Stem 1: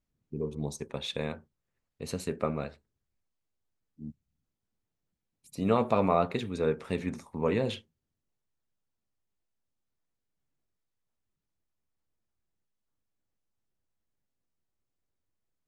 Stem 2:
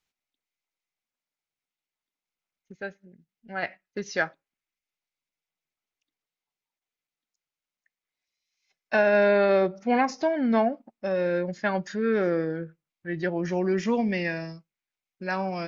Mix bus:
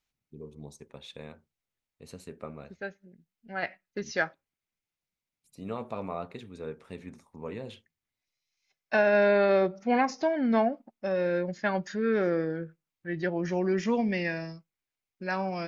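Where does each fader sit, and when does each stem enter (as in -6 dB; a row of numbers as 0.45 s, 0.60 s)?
-10.5 dB, -2.0 dB; 0.00 s, 0.00 s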